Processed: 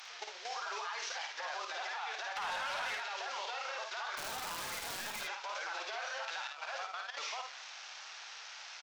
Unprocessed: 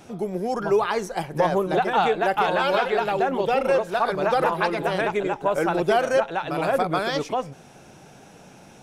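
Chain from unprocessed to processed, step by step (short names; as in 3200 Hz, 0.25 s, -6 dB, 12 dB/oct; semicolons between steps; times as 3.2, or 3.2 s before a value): delta modulation 32 kbps, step -33.5 dBFS; 6.47–7.18 gate -22 dBFS, range -18 dB; Bessel high-pass 1400 Hz, order 4; limiter -28.5 dBFS, peak gain reduction 7.5 dB; level quantiser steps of 11 dB; 2.36–2.95 sample leveller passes 2; compressor 3:1, threshold -43 dBFS, peak gain reduction 4.5 dB; 4.16–5.21 wrapped overs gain 40 dB; early reflections 54 ms -4.5 dB, 75 ms -10.5 dB; gain +4.5 dB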